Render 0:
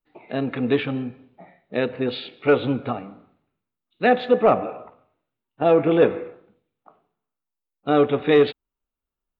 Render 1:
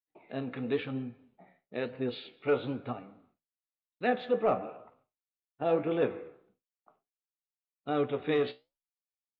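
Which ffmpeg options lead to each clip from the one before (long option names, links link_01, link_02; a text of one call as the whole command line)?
ffmpeg -i in.wav -af "flanger=delay=7.4:depth=8.7:regen=66:speed=1:shape=sinusoidal,agate=range=-33dB:threshold=-57dB:ratio=3:detection=peak,volume=-7dB" out.wav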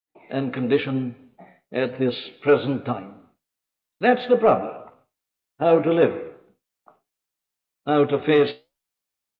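ffmpeg -i in.wav -af "dynaudnorm=framelen=130:gausssize=3:maxgain=11dB" out.wav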